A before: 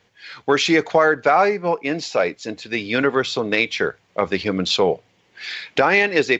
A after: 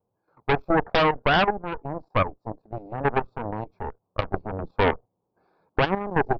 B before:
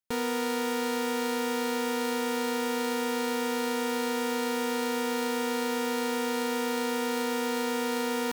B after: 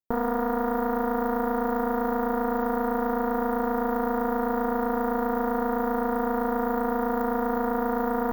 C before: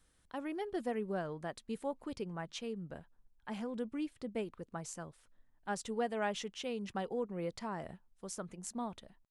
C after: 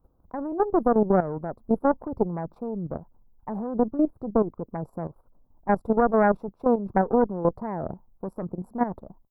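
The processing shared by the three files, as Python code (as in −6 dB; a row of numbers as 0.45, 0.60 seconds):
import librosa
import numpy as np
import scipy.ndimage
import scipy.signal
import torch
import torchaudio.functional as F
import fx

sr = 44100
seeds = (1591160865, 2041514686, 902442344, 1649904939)

y = scipy.signal.sosfilt(scipy.signal.cheby2(4, 40, [1800.0, 9900.0], 'bandstop', fs=sr, output='sos'), x)
y = fx.cheby_harmonics(y, sr, harmonics=(8,), levels_db=(-6,), full_scale_db=-4.0)
y = fx.level_steps(y, sr, step_db=12)
y = y * 10.0 ** (-26 / 20.0) / np.sqrt(np.mean(np.square(y)))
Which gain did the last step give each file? −6.5, +10.0, +17.5 decibels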